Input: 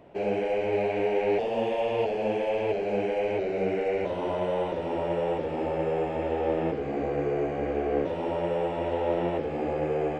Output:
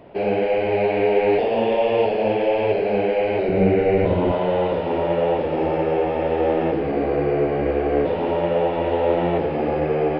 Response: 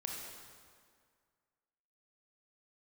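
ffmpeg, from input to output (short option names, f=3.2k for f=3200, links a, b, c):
-filter_complex "[0:a]asettb=1/sr,asplit=3[a][b][c];[a]atrim=end=3.484[d];[b]atrim=start=3.48:end=4.32,asetpts=PTS-STARTPTS,afade=t=in:d=0.004:c=qsin,afade=t=out:st=0.836:d=0.004:c=qsin,bass=f=250:g=13,treble=f=4k:g=-5[e];[c]atrim=start=4.316[f];[d][e]acrossfade=d=0.004:c1=hsin:c2=qsin[g];[g][f]acrossfade=d=0.004:c1=qsin:c2=hsin,asplit=2[h][i];[1:a]atrim=start_sample=2205[j];[i][j]afir=irnorm=-1:irlink=0,volume=-1.5dB[k];[h][k]amix=inputs=2:normalize=0,aresample=11025,aresample=44100,volume=3dB"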